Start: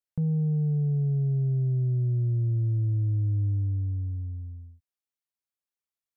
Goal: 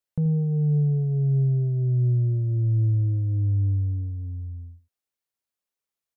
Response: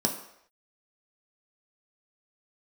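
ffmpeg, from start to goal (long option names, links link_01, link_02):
-filter_complex "[0:a]equalizer=frequency=520:width_type=o:width=0.77:gain=3,asplit=2[link_01][link_02];[link_02]aecho=0:1:81:0.224[link_03];[link_01][link_03]amix=inputs=2:normalize=0,volume=3dB"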